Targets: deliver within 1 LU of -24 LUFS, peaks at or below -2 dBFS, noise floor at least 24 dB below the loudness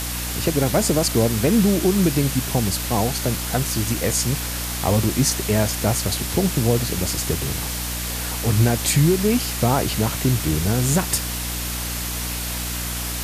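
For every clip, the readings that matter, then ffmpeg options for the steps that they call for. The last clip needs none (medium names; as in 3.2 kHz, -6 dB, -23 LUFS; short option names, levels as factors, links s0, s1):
hum 60 Hz; highest harmonic 300 Hz; hum level -28 dBFS; noise floor -27 dBFS; noise floor target -45 dBFS; loudness -21.0 LUFS; peak level -5.0 dBFS; loudness target -24.0 LUFS
-> -af "bandreject=f=60:t=h:w=4,bandreject=f=120:t=h:w=4,bandreject=f=180:t=h:w=4,bandreject=f=240:t=h:w=4,bandreject=f=300:t=h:w=4"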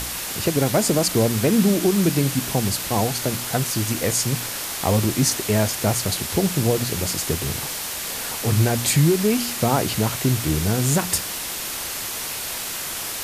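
hum not found; noise floor -29 dBFS; noise floor target -46 dBFS
-> -af "afftdn=nr=17:nf=-29"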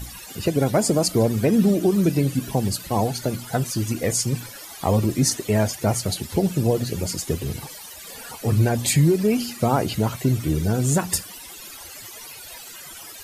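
noise floor -40 dBFS; noise floor target -46 dBFS
-> -af "afftdn=nr=6:nf=-40"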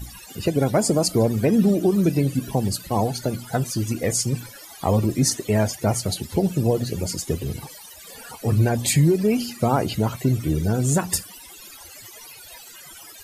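noise floor -43 dBFS; noise floor target -46 dBFS
-> -af "afftdn=nr=6:nf=-43"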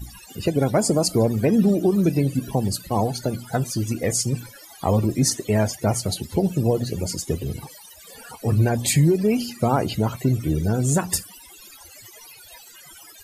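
noise floor -46 dBFS; loudness -22.0 LUFS; peak level -7.0 dBFS; loudness target -24.0 LUFS
-> -af "volume=0.794"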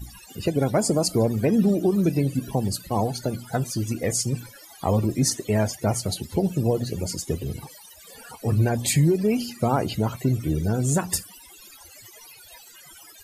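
loudness -24.0 LUFS; peak level -9.0 dBFS; noise floor -48 dBFS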